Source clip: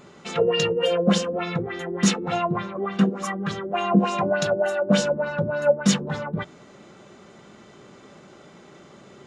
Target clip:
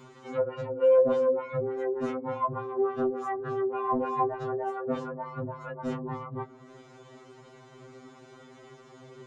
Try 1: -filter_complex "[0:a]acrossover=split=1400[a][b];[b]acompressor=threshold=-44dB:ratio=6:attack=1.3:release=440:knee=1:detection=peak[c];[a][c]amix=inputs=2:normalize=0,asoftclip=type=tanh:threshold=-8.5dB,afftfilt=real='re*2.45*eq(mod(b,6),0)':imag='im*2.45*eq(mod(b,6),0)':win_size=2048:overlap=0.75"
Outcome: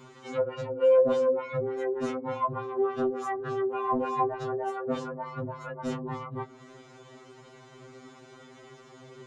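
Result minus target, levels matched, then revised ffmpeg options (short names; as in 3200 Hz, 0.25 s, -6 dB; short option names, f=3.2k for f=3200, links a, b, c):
compressor: peak gain reduction -8.5 dB
-filter_complex "[0:a]acrossover=split=1400[a][b];[b]acompressor=threshold=-54dB:ratio=6:attack=1.3:release=440:knee=1:detection=peak[c];[a][c]amix=inputs=2:normalize=0,asoftclip=type=tanh:threshold=-8.5dB,afftfilt=real='re*2.45*eq(mod(b,6),0)':imag='im*2.45*eq(mod(b,6),0)':win_size=2048:overlap=0.75"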